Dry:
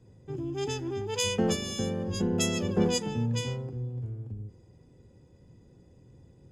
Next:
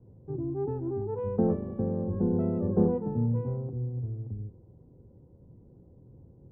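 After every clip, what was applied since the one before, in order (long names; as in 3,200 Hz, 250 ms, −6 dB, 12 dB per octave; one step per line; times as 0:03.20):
Bessel low-pass filter 710 Hz, order 6
level +2 dB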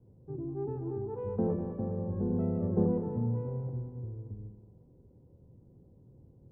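echo with a time of its own for lows and highs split 420 Hz, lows 92 ms, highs 198 ms, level −8 dB
level −5 dB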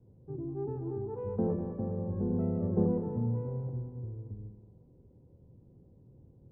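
high-frequency loss of the air 210 metres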